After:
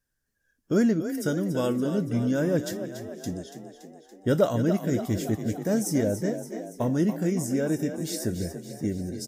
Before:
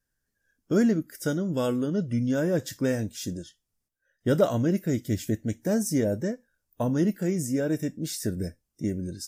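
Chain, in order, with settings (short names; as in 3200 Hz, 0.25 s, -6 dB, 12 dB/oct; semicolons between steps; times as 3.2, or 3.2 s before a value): 2.77–3.24 passive tone stack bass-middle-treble 10-0-1; frequency-shifting echo 0.284 s, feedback 59%, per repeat +35 Hz, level -10 dB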